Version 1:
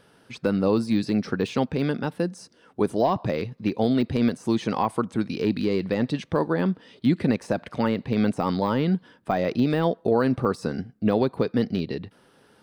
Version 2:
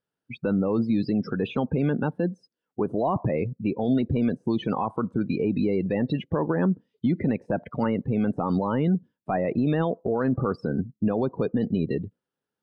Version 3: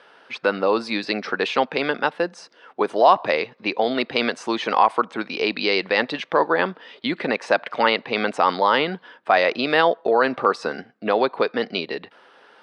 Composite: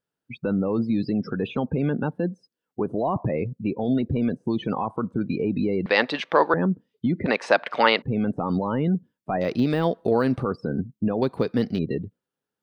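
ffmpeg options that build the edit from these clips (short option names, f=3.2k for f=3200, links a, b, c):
-filter_complex "[2:a]asplit=2[a][b];[0:a]asplit=2[c][d];[1:a]asplit=5[e][f][g][h][i];[e]atrim=end=5.862[j];[a]atrim=start=5.858:end=6.542[k];[f]atrim=start=6.538:end=7.262[l];[b]atrim=start=7.258:end=8.022[m];[g]atrim=start=8.018:end=9.412[n];[c]atrim=start=9.408:end=10.432[o];[h]atrim=start=10.428:end=11.222[p];[d]atrim=start=11.218:end=11.792[q];[i]atrim=start=11.788[r];[j][k]acrossfade=d=0.004:c1=hsin:c2=hsin[s];[s][l]acrossfade=d=0.004:c1=hsin:c2=hsin[t];[t][m]acrossfade=d=0.004:c1=hsin:c2=hsin[u];[u][n]acrossfade=d=0.004:c1=hsin:c2=hsin[v];[v][o]acrossfade=d=0.004:c1=hsin:c2=hsin[w];[w][p]acrossfade=d=0.004:c1=hsin:c2=hsin[x];[x][q]acrossfade=d=0.004:c1=hsin:c2=hsin[y];[y][r]acrossfade=d=0.004:c1=hsin:c2=hsin"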